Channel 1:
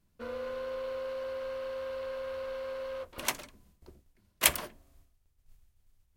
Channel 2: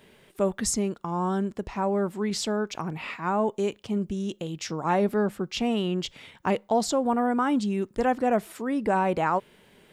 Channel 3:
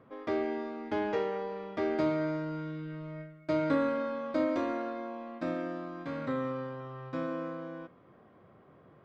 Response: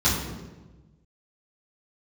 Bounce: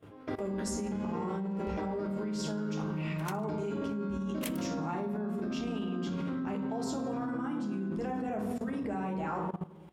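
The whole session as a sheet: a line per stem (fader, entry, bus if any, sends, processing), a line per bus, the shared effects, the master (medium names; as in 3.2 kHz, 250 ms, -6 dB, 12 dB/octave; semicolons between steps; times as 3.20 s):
-9.0 dB, 0.00 s, no send, none
-8.0 dB, 0.00 s, send -14.5 dB, none
+0.5 dB, 0.00 s, send -8.5 dB, compression 8:1, threshold -41 dBFS, peak gain reduction 17 dB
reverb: on, RT60 1.2 s, pre-delay 3 ms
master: level held to a coarse grid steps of 17 dB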